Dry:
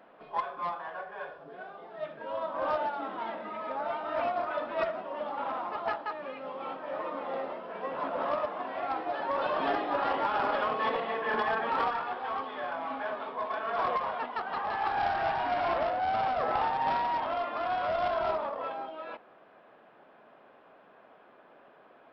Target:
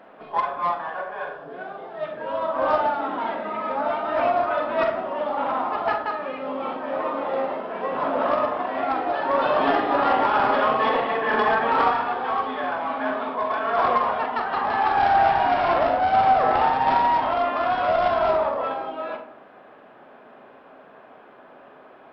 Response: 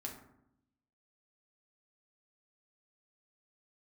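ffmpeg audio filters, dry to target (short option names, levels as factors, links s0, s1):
-filter_complex "[0:a]highshelf=f=4900:g=-4.5,asplit=2[s0][s1];[1:a]atrim=start_sample=2205,adelay=43[s2];[s1][s2]afir=irnorm=-1:irlink=0,volume=0.668[s3];[s0][s3]amix=inputs=2:normalize=0,volume=2.51"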